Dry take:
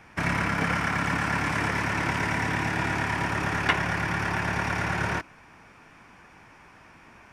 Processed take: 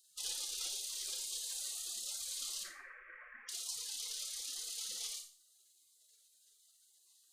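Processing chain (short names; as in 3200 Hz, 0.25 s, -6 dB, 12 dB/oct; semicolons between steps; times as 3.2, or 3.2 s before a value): 2.63–3.49 Bessel low-pass 730 Hz, order 6; spectral gate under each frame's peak -30 dB weak; Schroeder reverb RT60 0.4 s, combs from 29 ms, DRR 4.5 dB; gain +6.5 dB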